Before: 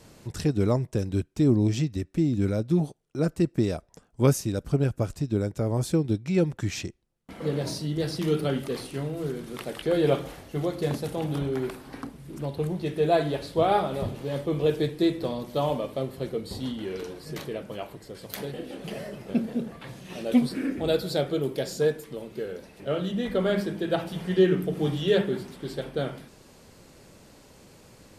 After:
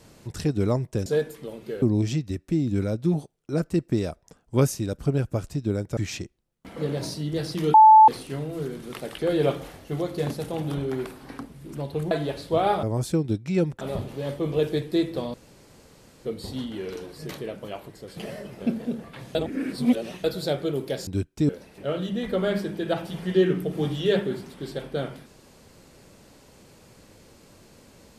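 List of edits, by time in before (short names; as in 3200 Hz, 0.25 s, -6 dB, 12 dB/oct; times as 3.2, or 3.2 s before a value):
1.06–1.48 swap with 21.75–22.51
5.63–6.61 move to 13.88
8.38–8.72 bleep 872 Hz -8 dBFS
12.75–13.16 cut
15.41–16.32 room tone
18.24–18.85 cut
20.03–20.92 reverse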